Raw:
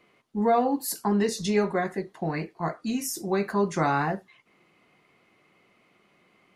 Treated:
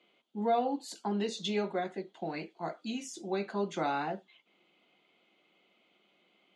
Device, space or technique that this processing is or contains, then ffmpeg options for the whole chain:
television speaker: -filter_complex "[0:a]highpass=frequency=210:width=0.5412,highpass=frequency=210:width=1.3066,equalizer=frequency=260:width_type=q:width=4:gain=-4,equalizer=frequency=430:width_type=q:width=4:gain=-4,equalizer=frequency=1100:width_type=q:width=4:gain=-9,equalizer=frequency=1800:width_type=q:width=4:gain=-9,equalizer=frequency=3300:width_type=q:width=4:gain=10,equalizer=frequency=5400:width_type=q:width=4:gain=-9,lowpass=frequency=6700:width=0.5412,lowpass=frequency=6700:width=1.3066,asettb=1/sr,asplit=3[link_01][link_02][link_03];[link_01]atrim=end=2.164[link_04];[link_02]atrim=start=2.16:end=2.85,asetpts=PTS-STARTPTS,afade=type=in:duration=0.004:curve=qsin,afade=type=out:start_time=0.686:duration=0.004:curve=qsin,highshelf=frequency=5800:gain=8[link_05];[link_03]atrim=start=2.846[link_06];[link_04][link_05]acrossfade=duration=0.004:curve1=hsin:curve2=qsin[link_07];[link_07][link_06]acrossfade=duration=0.004:curve1=qsin:curve2=hsin,volume=-4.5dB"

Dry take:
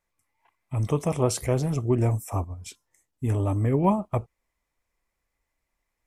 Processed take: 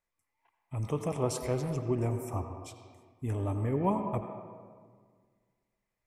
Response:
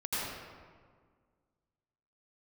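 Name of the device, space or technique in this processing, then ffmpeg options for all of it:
filtered reverb send: -filter_complex "[0:a]asplit=2[link_01][link_02];[link_02]highpass=210,lowpass=4700[link_03];[1:a]atrim=start_sample=2205[link_04];[link_03][link_04]afir=irnorm=-1:irlink=0,volume=-11dB[link_05];[link_01][link_05]amix=inputs=2:normalize=0,volume=-8dB"

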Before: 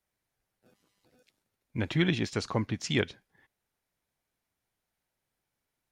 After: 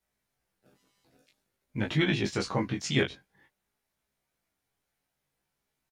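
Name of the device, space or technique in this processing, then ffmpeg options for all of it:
double-tracked vocal: -filter_complex "[0:a]asplit=2[link_01][link_02];[link_02]adelay=15,volume=-4.5dB[link_03];[link_01][link_03]amix=inputs=2:normalize=0,flanger=delay=19.5:depth=2.8:speed=0.51,volume=3.5dB"

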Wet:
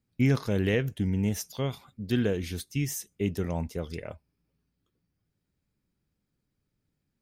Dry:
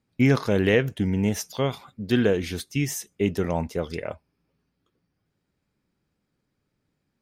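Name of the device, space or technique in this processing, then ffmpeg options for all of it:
smiley-face EQ: -af "lowshelf=frequency=120:gain=7.5,equalizer=frequency=890:width_type=o:width=2.6:gain=-3.5,highshelf=frequency=9600:gain=6.5,volume=-5.5dB"

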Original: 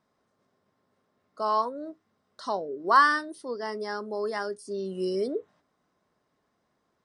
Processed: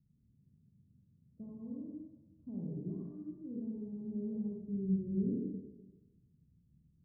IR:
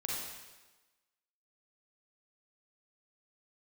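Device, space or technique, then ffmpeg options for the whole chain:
club heard from the street: -filter_complex "[0:a]alimiter=limit=-19dB:level=0:latency=1,lowpass=frequency=160:width=0.5412,lowpass=frequency=160:width=1.3066[link_01];[1:a]atrim=start_sample=2205[link_02];[link_01][link_02]afir=irnorm=-1:irlink=0,volume=14.5dB"

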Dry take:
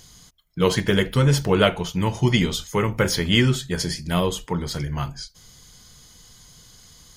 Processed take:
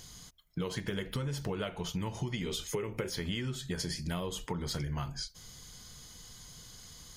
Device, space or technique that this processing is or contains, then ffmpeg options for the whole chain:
serial compression, peaks first: -filter_complex "[0:a]asettb=1/sr,asplit=3[link_01][link_02][link_03];[link_01]atrim=end=2.464[link_04];[link_02]atrim=start=2.46:end=3.1,asetpts=PTS-STARTPTS,afade=type=in:duration=0.004:curve=qsin,afade=type=out:start_time=0.636:duration=0.004:curve=qsin,equalizer=frequency=400:width_type=o:width=0.67:gain=11,equalizer=frequency=2500:width_type=o:width=0.67:gain=7,equalizer=frequency=10000:width_type=o:width=0.67:gain=4[link_05];[link_03]atrim=start=3.096[link_06];[link_04][link_05]acrossfade=duration=0.004:curve1=hsin:curve2=qsin[link_07];[link_07][link_06]acrossfade=duration=0.004:curve1=qsin:curve2=hsin,acompressor=threshold=-25dB:ratio=6,acompressor=threshold=-32dB:ratio=2.5,volume=-2dB"

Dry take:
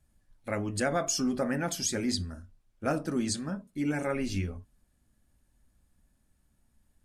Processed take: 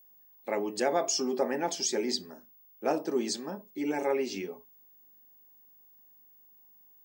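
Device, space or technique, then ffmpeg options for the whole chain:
old television with a line whistle: -af "highpass=frequency=230:width=0.5412,highpass=frequency=230:width=1.3066,equalizer=frequency=260:width_type=q:width=4:gain=-5,equalizer=frequency=400:width_type=q:width=4:gain=9,equalizer=frequency=870:width_type=q:width=4:gain=9,equalizer=frequency=1400:width_type=q:width=4:gain=-9,equalizer=frequency=5400:width_type=q:width=4:gain=3,lowpass=frequency=7400:width=0.5412,lowpass=frequency=7400:width=1.3066,aeval=exprs='val(0)+0.00158*sin(2*PI*15625*n/s)':channel_layout=same"

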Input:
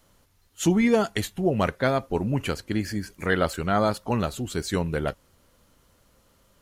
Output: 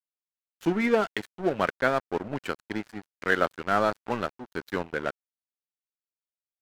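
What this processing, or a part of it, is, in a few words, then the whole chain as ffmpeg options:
pocket radio on a weak battery: -af "highpass=250,lowpass=3400,aeval=exprs='sgn(val(0))*max(abs(val(0))-0.0188,0)':channel_layout=same,equalizer=frequency=1500:width_type=o:width=0.52:gain=4.5"

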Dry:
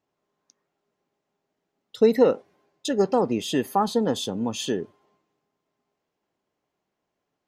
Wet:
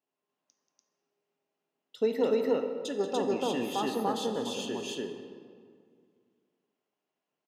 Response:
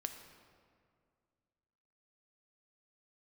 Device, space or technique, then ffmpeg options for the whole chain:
stadium PA: -filter_complex "[0:a]highpass=190,equalizer=frequency=2800:width_type=o:width=0.3:gain=6.5,aecho=1:1:183.7|291.5:0.251|1[link_01];[1:a]atrim=start_sample=2205[link_02];[link_01][link_02]afir=irnorm=-1:irlink=0,volume=-8dB"

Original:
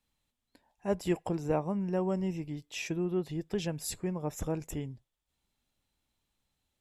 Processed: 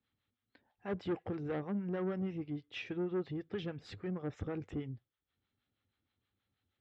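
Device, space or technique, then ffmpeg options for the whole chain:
guitar amplifier with harmonic tremolo: -filter_complex "[0:a]acrossover=split=600[link_01][link_02];[link_01]aeval=exprs='val(0)*(1-0.7/2+0.7/2*cos(2*PI*6.3*n/s))':channel_layout=same[link_03];[link_02]aeval=exprs='val(0)*(1-0.7/2-0.7/2*cos(2*PI*6.3*n/s))':channel_layout=same[link_04];[link_03][link_04]amix=inputs=2:normalize=0,asoftclip=type=tanh:threshold=-32.5dB,highpass=91,equalizer=frequency=100:width_type=q:width=4:gain=8,equalizer=frequency=160:width_type=q:width=4:gain=-6,equalizer=frequency=630:width_type=q:width=4:gain=-7,equalizer=frequency=950:width_type=q:width=4:gain=-9,equalizer=frequency=1300:width_type=q:width=4:gain=3,equalizer=frequency=2600:width_type=q:width=4:gain=-5,lowpass=frequency=3400:width=0.5412,lowpass=frequency=3400:width=1.3066,volume=3.5dB"

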